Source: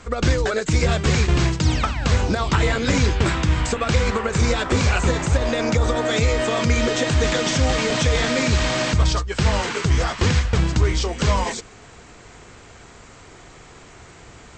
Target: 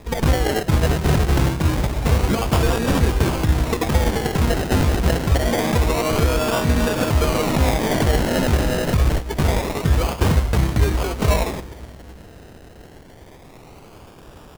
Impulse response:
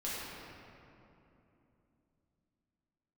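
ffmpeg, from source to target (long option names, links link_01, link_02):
-filter_complex "[0:a]asplit=2[link_01][link_02];[1:a]atrim=start_sample=2205,highshelf=frequency=3200:gain=5.5[link_03];[link_02][link_03]afir=irnorm=-1:irlink=0,volume=-21.5dB[link_04];[link_01][link_04]amix=inputs=2:normalize=0,acrusher=samples=30:mix=1:aa=0.000001:lfo=1:lforange=18:lforate=0.26,asplit=2[link_05][link_06];[link_06]asetrate=33038,aresample=44100,atempo=1.33484,volume=-8dB[link_07];[link_05][link_07]amix=inputs=2:normalize=0"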